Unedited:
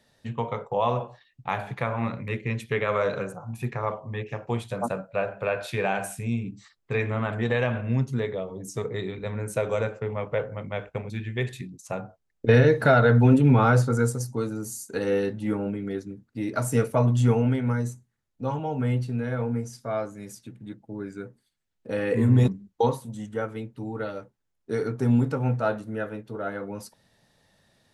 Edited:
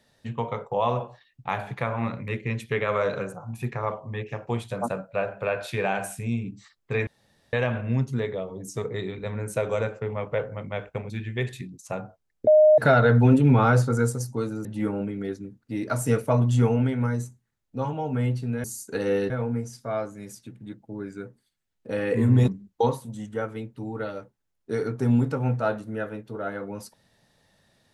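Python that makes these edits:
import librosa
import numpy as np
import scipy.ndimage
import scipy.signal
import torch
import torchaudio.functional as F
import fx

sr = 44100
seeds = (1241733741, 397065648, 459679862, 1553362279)

y = fx.edit(x, sr, fx.room_tone_fill(start_s=7.07, length_s=0.46),
    fx.bleep(start_s=12.47, length_s=0.31, hz=615.0, db=-11.5),
    fx.move(start_s=14.65, length_s=0.66, to_s=19.3), tone=tone)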